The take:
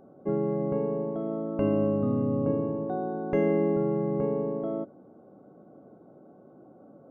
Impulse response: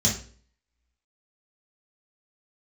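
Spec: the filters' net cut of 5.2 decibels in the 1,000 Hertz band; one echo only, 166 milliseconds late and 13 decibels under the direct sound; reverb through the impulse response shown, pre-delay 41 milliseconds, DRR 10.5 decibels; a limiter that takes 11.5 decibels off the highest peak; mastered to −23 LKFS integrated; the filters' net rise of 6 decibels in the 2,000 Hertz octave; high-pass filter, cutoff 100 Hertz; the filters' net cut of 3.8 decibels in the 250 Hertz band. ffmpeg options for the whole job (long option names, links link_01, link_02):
-filter_complex "[0:a]highpass=100,equalizer=frequency=250:width_type=o:gain=-4.5,equalizer=frequency=1000:width_type=o:gain=-9,equalizer=frequency=2000:width_type=o:gain=9,alimiter=level_in=3dB:limit=-24dB:level=0:latency=1,volume=-3dB,aecho=1:1:166:0.224,asplit=2[link_01][link_02];[1:a]atrim=start_sample=2205,adelay=41[link_03];[link_02][link_03]afir=irnorm=-1:irlink=0,volume=-21dB[link_04];[link_01][link_04]amix=inputs=2:normalize=0,volume=10.5dB"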